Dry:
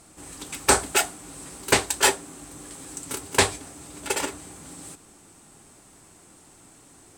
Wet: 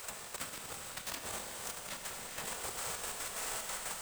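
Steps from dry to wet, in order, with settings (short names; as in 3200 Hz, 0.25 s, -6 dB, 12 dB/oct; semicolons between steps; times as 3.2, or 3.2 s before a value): half-waves squared off; spectral gate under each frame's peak -10 dB weak; granular stretch 0.56×, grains 87 ms; step gate ".xxx.x.x" 183 bpm -12 dB; flipped gate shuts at -22 dBFS, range -28 dB; harmonic-percussive split percussive -6 dB; negative-ratio compressor -56 dBFS, ratio -1; Schroeder reverb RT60 4 s, combs from 26 ms, DRR 3.5 dB; three-band squash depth 40%; gain +11 dB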